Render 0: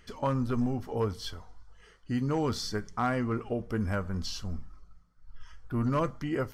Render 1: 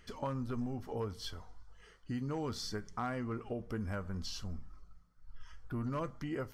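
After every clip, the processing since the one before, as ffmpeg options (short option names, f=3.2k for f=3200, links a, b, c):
-af "acompressor=threshold=-36dB:ratio=2,volume=-2.5dB"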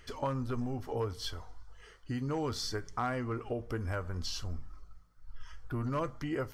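-af "equalizer=f=200:t=o:w=0.28:g=-15,volume=4.5dB"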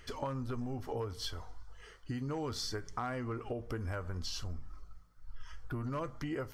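-af "acompressor=threshold=-36dB:ratio=3,volume=1dB"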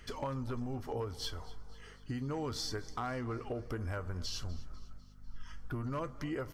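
-af "volume=29dB,asoftclip=hard,volume=-29dB,aeval=exprs='val(0)+0.00158*(sin(2*PI*50*n/s)+sin(2*PI*2*50*n/s)/2+sin(2*PI*3*50*n/s)/3+sin(2*PI*4*50*n/s)/4+sin(2*PI*5*50*n/s)/5)':c=same,aecho=1:1:248|496|744|992:0.106|0.0572|0.0309|0.0167"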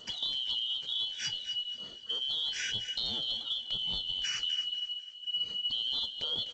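-af "afftfilt=real='real(if(lt(b,272),68*(eq(floor(b/68),0)*1+eq(floor(b/68),1)*3+eq(floor(b/68),2)*0+eq(floor(b/68),3)*2)+mod(b,68),b),0)':imag='imag(if(lt(b,272),68*(eq(floor(b/68),0)*1+eq(floor(b/68),1)*3+eq(floor(b/68),2)*0+eq(floor(b/68),3)*2)+mod(b,68),b),0)':win_size=2048:overlap=0.75,aecho=1:1:252:0.211,volume=3dB" -ar 16000 -c:a g722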